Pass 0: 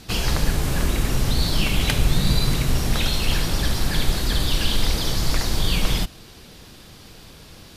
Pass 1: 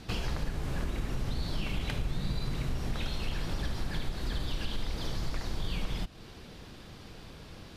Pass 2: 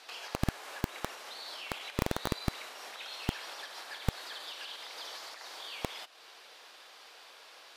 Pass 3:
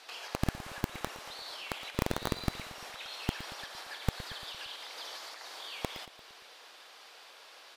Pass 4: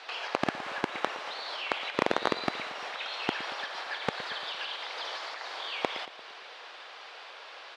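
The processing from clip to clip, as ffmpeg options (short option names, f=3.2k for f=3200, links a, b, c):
-af "lowpass=f=2.7k:p=1,acompressor=threshold=-29dB:ratio=3,volume=-2.5dB"
-filter_complex "[0:a]acrossover=split=560[a][b];[a]acrusher=bits=3:mix=0:aa=0.000001[c];[b]alimiter=level_in=10dB:limit=-24dB:level=0:latency=1:release=136,volume=-10dB[d];[c][d]amix=inputs=2:normalize=0,volume=1dB"
-af "aecho=1:1:115|230|345|460|575:0.178|0.0942|0.05|0.0265|0.014"
-af "highpass=380,lowpass=3.4k,volume=9dB"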